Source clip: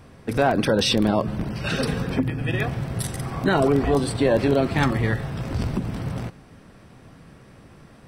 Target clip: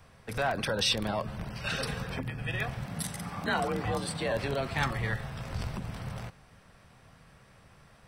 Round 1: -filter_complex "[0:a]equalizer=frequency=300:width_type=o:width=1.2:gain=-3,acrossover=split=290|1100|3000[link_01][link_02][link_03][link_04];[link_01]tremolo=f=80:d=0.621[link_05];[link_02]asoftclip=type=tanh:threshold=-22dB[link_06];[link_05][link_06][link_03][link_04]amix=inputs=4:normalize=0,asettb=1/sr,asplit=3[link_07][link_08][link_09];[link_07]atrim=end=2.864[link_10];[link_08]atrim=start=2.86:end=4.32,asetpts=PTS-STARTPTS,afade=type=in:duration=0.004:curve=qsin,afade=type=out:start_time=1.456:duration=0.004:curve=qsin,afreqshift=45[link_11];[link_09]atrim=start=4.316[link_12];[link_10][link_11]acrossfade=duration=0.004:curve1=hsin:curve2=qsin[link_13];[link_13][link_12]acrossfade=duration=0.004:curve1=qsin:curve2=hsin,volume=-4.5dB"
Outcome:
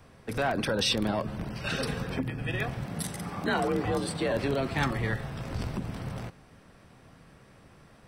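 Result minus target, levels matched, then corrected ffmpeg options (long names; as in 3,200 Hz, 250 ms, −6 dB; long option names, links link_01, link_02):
250 Hz band +3.5 dB
-filter_complex "[0:a]equalizer=frequency=300:width_type=o:width=1.2:gain=-12.5,acrossover=split=290|1100|3000[link_01][link_02][link_03][link_04];[link_01]tremolo=f=80:d=0.621[link_05];[link_02]asoftclip=type=tanh:threshold=-22dB[link_06];[link_05][link_06][link_03][link_04]amix=inputs=4:normalize=0,asettb=1/sr,asplit=3[link_07][link_08][link_09];[link_07]atrim=end=2.864[link_10];[link_08]atrim=start=2.86:end=4.32,asetpts=PTS-STARTPTS,afade=type=in:duration=0.004:curve=qsin,afade=type=out:start_time=1.456:duration=0.004:curve=qsin,afreqshift=45[link_11];[link_09]atrim=start=4.316[link_12];[link_10][link_11]acrossfade=duration=0.004:curve1=hsin:curve2=qsin[link_13];[link_13][link_12]acrossfade=duration=0.004:curve1=qsin:curve2=hsin,volume=-4.5dB"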